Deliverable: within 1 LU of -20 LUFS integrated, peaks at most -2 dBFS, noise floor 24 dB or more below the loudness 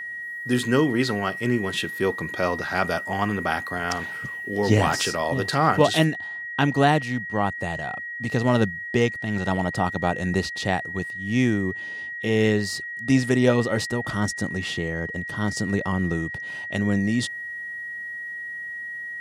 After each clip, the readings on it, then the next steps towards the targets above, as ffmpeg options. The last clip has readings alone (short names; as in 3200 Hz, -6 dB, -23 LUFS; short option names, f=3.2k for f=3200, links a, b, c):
steady tone 1900 Hz; tone level -31 dBFS; loudness -24.5 LUFS; peak -4.0 dBFS; loudness target -20.0 LUFS
-> -af "bandreject=f=1.9k:w=30"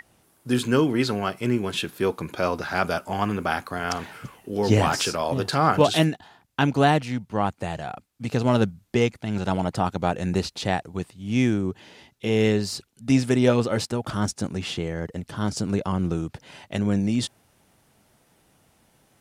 steady tone none; loudness -24.5 LUFS; peak -4.5 dBFS; loudness target -20.0 LUFS
-> -af "volume=4.5dB,alimiter=limit=-2dB:level=0:latency=1"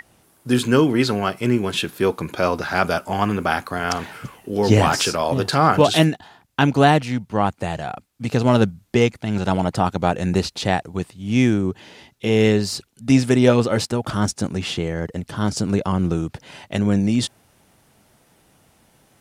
loudness -20.5 LUFS; peak -2.0 dBFS; noise floor -59 dBFS